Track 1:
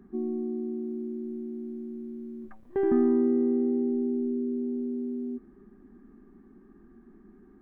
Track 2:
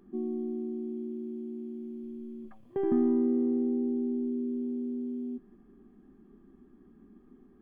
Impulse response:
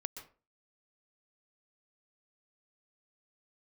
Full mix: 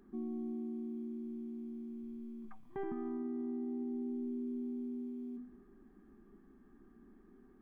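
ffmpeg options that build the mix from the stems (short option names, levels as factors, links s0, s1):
-filter_complex "[0:a]equalizer=f=160:w=0.51:g=-10,volume=0.562[s0];[1:a]volume=0.501[s1];[s0][s1]amix=inputs=2:normalize=0,bandreject=f=247.5:t=h:w=4,bandreject=f=495:t=h:w=4,bandreject=f=742.5:t=h:w=4,alimiter=level_in=2.66:limit=0.0631:level=0:latency=1:release=158,volume=0.376"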